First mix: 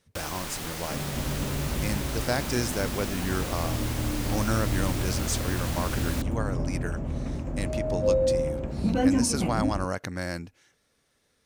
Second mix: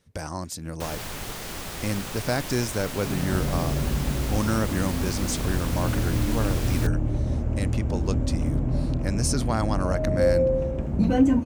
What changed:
first sound: entry +0.65 s
second sound: entry +2.15 s
master: add low-shelf EQ 410 Hz +5 dB

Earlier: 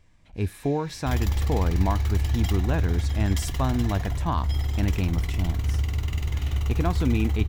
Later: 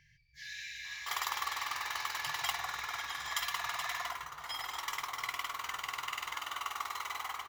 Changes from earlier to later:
speech: muted
first sound +8.0 dB
second sound: add high-pass with resonance 1,100 Hz, resonance Q 3.9

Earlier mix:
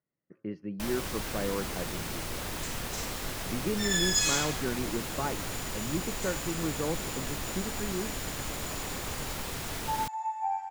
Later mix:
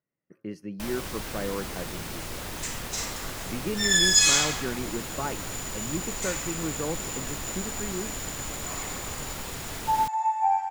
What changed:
speech: remove high-frequency loss of the air 290 metres
second sound +8.0 dB

